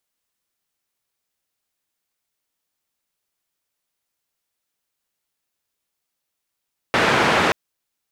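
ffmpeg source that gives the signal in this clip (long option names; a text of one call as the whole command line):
ffmpeg -f lavfi -i "anoisesrc=color=white:duration=0.58:sample_rate=44100:seed=1,highpass=frequency=110,lowpass=frequency=1800,volume=-2dB" out.wav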